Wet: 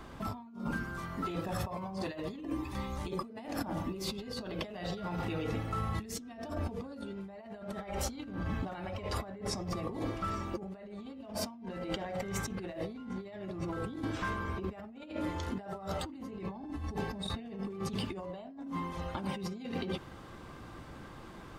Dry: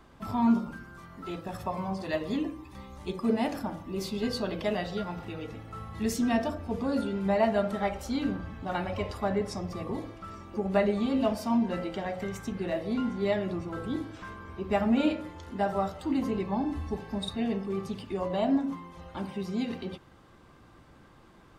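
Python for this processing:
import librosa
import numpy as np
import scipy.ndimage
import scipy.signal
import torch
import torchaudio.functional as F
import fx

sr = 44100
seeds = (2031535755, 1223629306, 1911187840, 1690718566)

y = fx.over_compress(x, sr, threshold_db=-40.0, ratio=-1.0)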